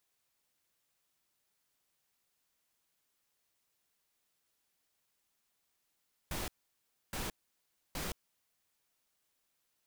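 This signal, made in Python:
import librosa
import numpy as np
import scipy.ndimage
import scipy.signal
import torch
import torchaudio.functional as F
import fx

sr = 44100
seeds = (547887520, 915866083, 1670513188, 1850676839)

y = fx.noise_burst(sr, seeds[0], colour='pink', on_s=0.17, off_s=0.65, bursts=3, level_db=-38.5)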